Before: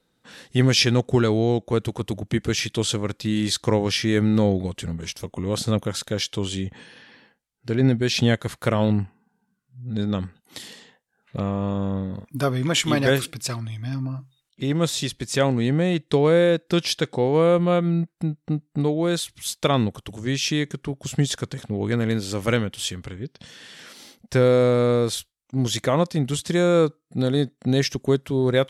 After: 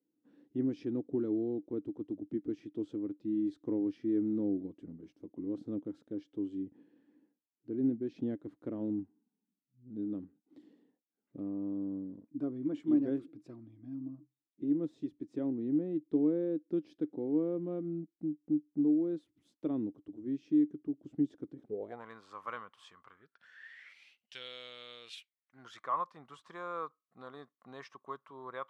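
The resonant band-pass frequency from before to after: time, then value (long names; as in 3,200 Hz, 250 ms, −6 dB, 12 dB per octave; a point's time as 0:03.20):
resonant band-pass, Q 9.7
0:21.61 300 Hz
0:22.07 1,100 Hz
0:23.05 1,100 Hz
0:24.36 3,100 Hz
0:24.99 3,100 Hz
0:25.88 1,100 Hz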